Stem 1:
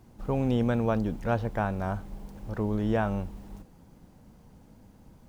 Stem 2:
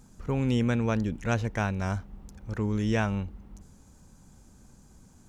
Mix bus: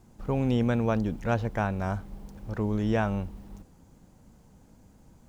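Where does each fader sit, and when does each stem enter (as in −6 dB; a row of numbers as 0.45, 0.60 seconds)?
−2.5, −9.5 decibels; 0.00, 0.00 seconds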